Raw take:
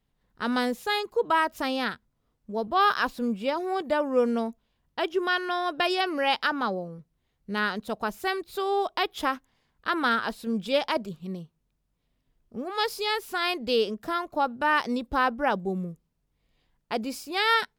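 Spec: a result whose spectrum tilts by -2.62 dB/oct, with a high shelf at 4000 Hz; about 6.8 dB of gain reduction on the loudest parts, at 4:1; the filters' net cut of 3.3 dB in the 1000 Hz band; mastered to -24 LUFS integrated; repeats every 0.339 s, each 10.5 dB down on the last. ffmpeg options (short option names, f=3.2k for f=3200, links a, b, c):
-af "equalizer=f=1k:t=o:g=-4,highshelf=f=4k:g=-4.5,acompressor=threshold=-28dB:ratio=4,aecho=1:1:339|678|1017:0.299|0.0896|0.0269,volume=9dB"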